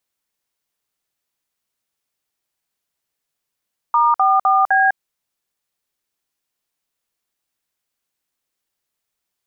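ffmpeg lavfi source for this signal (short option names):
-f lavfi -i "aevalsrc='0.2*clip(min(mod(t,0.255),0.202-mod(t,0.255))/0.002,0,1)*(eq(floor(t/0.255),0)*(sin(2*PI*941*mod(t,0.255))+sin(2*PI*1209*mod(t,0.255)))+eq(floor(t/0.255),1)*(sin(2*PI*770*mod(t,0.255))+sin(2*PI*1209*mod(t,0.255)))+eq(floor(t/0.255),2)*(sin(2*PI*770*mod(t,0.255))+sin(2*PI*1209*mod(t,0.255)))+eq(floor(t/0.255),3)*(sin(2*PI*770*mod(t,0.255))+sin(2*PI*1633*mod(t,0.255))))':d=1.02:s=44100"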